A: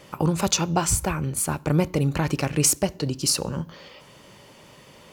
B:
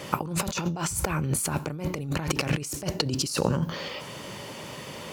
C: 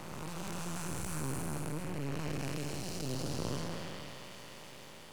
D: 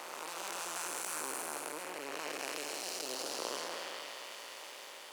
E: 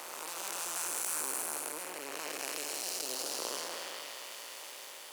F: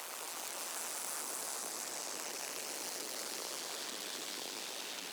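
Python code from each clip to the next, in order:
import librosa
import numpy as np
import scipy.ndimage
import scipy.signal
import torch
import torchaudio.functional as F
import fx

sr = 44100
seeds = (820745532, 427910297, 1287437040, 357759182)

y1 = scipy.signal.sosfilt(scipy.signal.butter(2, 71.0, 'highpass', fs=sr, output='sos'), x)
y1 = fx.over_compress(y1, sr, threshold_db=-32.0, ratio=-1.0)
y1 = y1 * 10.0 ** (3.0 / 20.0)
y2 = fx.spec_blur(y1, sr, span_ms=728.0)
y2 = np.maximum(y2, 0.0)
y2 = fx.band_widen(y2, sr, depth_pct=40)
y2 = y2 * 10.0 ** (-1.5 / 20.0)
y3 = scipy.signal.sosfilt(scipy.signal.bessel(4, 590.0, 'highpass', norm='mag', fs=sr, output='sos'), y2)
y3 = y3 + 10.0 ** (-23.5 / 20.0) * np.pad(y3, (int(1187 * sr / 1000.0), 0))[:len(y3)]
y3 = y3 * 10.0 ** (4.5 / 20.0)
y4 = fx.high_shelf(y3, sr, hz=6700.0, db=10.5)
y4 = y4 * 10.0 ** (-1.0 / 20.0)
y5 = fx.hpss(y4, sr, part='harmonic', gain_db=-16)
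y5 = fx.echo_pitch(y5, sr, ms=108, semitones=-4, count=2, db_per_echo=-3.0)
y5 = fx.band_squash(y5, sr, depth_pct=70)
y5 = y5 * 10.0 ** (-2.0 / 20.0)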